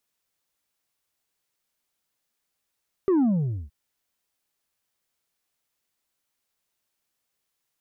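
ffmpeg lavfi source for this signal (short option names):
-f lavfi -i "aevalsrc='0.126*clip((0.62-t)/0.48,0,1)*tanh(1.5*sin(2*PI*400*0.62/log(65/400)*(exp(log(65/400)*t/0.62)-1)))/tanh(1.5)':d=0.62:s=44100"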